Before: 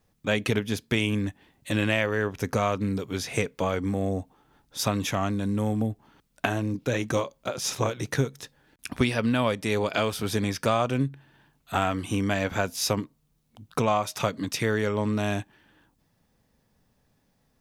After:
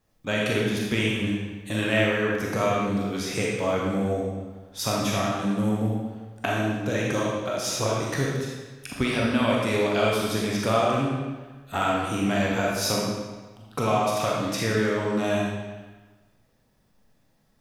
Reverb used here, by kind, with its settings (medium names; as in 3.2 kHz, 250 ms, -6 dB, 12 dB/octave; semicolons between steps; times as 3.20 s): algorithmic reverb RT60 1.3 s, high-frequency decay 0.9×, pre-delay 0 ms, DRR -4 dB; trim -3 dB